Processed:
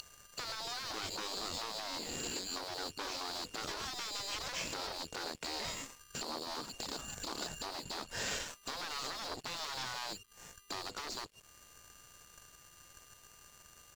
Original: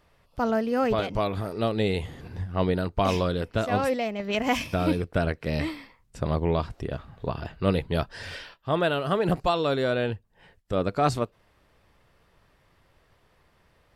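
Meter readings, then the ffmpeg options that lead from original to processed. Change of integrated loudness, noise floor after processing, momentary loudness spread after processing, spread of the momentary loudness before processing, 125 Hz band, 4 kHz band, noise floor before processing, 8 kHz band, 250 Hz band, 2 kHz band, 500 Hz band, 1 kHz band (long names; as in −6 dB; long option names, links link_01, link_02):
−12.5 dB, −61 dBFS, 18 LU, 10 LU, −25.5 dB, −1.5 dB, −64 dBFS, +6.5 dB, −21.5 dB, −9.5 dB, −21.0 dB, −13.5 dB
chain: -filter_complex "[0:a]aeval=exprs='val(0)+0.0316*sin(2*PI*4400*n/s)':channel_layout=same,equalizer=frequency=2600:width_type=o:width=1.8:gain=-7.5,asplit=2[link_01][link_02];[link_02]acompressor=threshold=-35dB:ratio=8,volume=-0.5dB[link_03];[link_01][link_03]amix=inputs=2:normalize=0,alimiter=limit=-20.5dB:level=0:latency=1:release=229,acrossover=split=370|3000[link_04][link_05][link_06];[link_05]acompressor=threshold=-37dB:ratio=4[link_07];[link_04][link_07][link_06]amix=inputs=3:normalize=0,aresample=16000,asoftclip=type=tanh:threshold=-36.5dB,aresample=44100,afftfilt=real='re*lt(hypot(re,im),0.0224)':imag='im*lt(hypot(re,im),0.0224)':win_size=1024:overlap=0.75,aeval=exprs='sgn(val(0))*max(abs(val(0))-0.00112,0)':channel_layout=same,volume=10dB"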